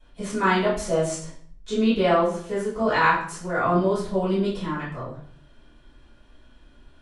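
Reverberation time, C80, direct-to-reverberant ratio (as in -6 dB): 0.55 s, 8.5 dB, -13.5 dB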